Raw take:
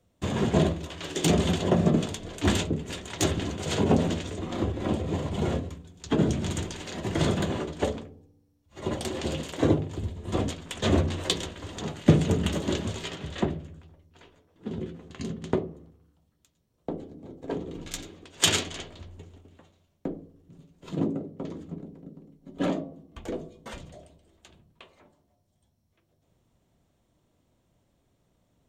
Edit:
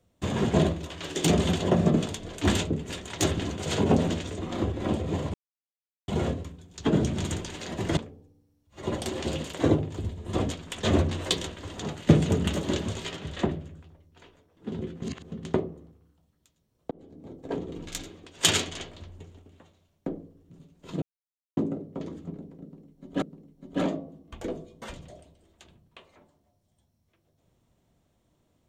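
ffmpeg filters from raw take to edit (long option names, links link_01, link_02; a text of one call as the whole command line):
ffmpeg -i in.wav -filter_complex "[0:a]asplit=8[link_01][link_02][link_03][link_04][link_05][link_06][link_07][link_08];[link_01]atrim=end=5.34,asetpts=PTS-STARTPTS,afade=type=out:start_time=5.336:duration=0.004:curve=hsin,apad=pad_dur=0.74[link_09];[link_02]atrim=start=5.34:end=7.232,asetpts=PTS-STARTPTS,afade=type=in:duration=0.004:curve=hsin[link_10];[link_03]atrim=start=7.958:end=15.012[link_11];[link_04]atrim=start=15.008:end=15.312,asetpts=PTS-STARTPTS,areverse[link_12];[link_05]atrim=start=15.308:end=16.9,asetpts=PTS-STARTPTS,afade=type=out:start_time=1.588:duration=0.004:curve=hsin[link_13];[link_06]atrim=start=16.9:end=21.01,asetpts=PTS-STARTPTS,afade=type=in:duration=0.35,afade=type=out:start_time=4.106:duration=0.004:curve=hsin,apad=pad_dur=0.55[link_14];[link_07]atrim=start=21.01:end=22.662,asetpts=PTS-STARTPTS,afade=type=in:duration=0.004:curve=hsin[link_15];[link_08]atrim=start=22.058[link_16];[link_09][link_10]concat=n=2:v=0:a=1[link_17];[link_17][link_11]acrossfade=duration=0.004:curve1=hsin:curve2=hsin[link_18];[link_18][link_12]acrossfade=duration=0.004:curve1=hsin:curve2=hsin[link_19];[link_13][link_14][link_15]concat=n=3:v=0:a=1[link_20];[link_19][link_20]acrossfade=duration=0.004:curve1=hsin:curve2=hsin[link_21];[link_21][link_16]acrossfade=duration=0.004:curve1=hsin:curve2=hsin" out.wav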